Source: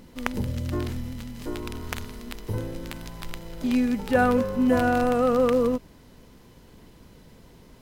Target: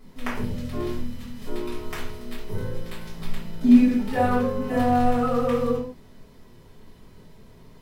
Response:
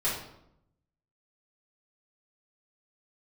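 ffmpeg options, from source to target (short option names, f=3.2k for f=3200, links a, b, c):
-filter_complex "[0:a]asettb=1/sr,asplit=3[a][b][c];[a]atrim=end=3.154[d];[b]atrim=start=3.15:end=3.82,asetpts=PTS-STARTPTS,afade=t=in:d=0.004:c=qsin,afade=t=out:st=0.666:d=0.004:c=qsin,equalizer=f=240:w=1.6:g=11[e];[c]atrim=start=3.816[f];[d][e]acrossfade=d=0.004:c1=hsin:c2=qsin[g];[g][f]acrossfade=d=0.004:c1=qsin:c2=hsin[h];[1:a]atrim=start_sample=2205,afade=t=out:st=0.22:d=0.01,atrim=end_sample=10143[i];[h][i]afir=irnorm=-1:irlink=0,volume=-9dB"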